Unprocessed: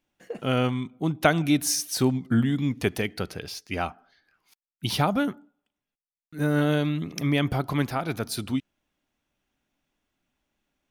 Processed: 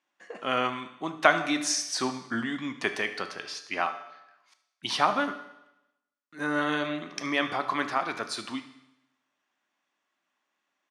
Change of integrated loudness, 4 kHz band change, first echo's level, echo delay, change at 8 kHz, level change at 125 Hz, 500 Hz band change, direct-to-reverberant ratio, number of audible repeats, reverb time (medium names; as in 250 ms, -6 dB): -3.0 dB, 0.0 dB, -17.0 dB, 74 ms, -2.0 dB, -18.5 dB, -3.0 dB, 7.5 dB, 1, 0.90 s